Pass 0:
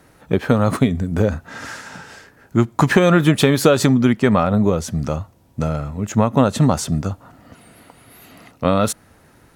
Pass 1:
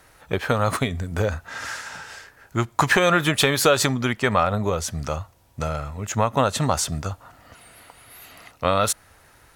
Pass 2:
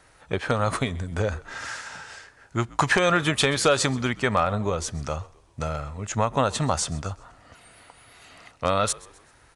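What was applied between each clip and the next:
peaking EQ 220 Hz -14 dB 2.2 oct; trim +2 dB
wavefolder -6 dBFS; resampled via 22.05 kHz; frequency-shifting echo 129 ms, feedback 43%, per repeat -66 Hz, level -22 dB; trim -2.5 dB

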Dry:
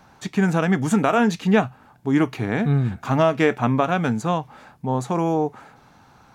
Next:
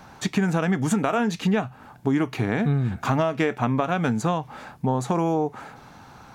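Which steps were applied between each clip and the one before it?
compression, threshold -25 dBFS, peak gain reduction 12.5 dB; trim +5.5 dB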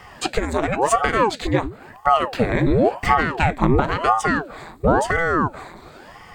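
rippled EQ curve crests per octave 1, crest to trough 13 dB; ring modulator with a swept carrier 540 Hz, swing 85%, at 0.96 Hz; trim +5 dB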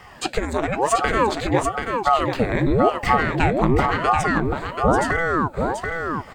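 delay 734 ms -5 dB; trim -1.5 dB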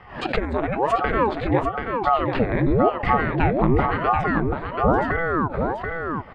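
distance through air 390 m; swell ahead of each attack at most 120 dB/s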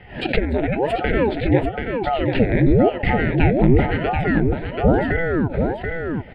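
static phaser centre 2.7 kHz, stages 4; trim +5.5 dB

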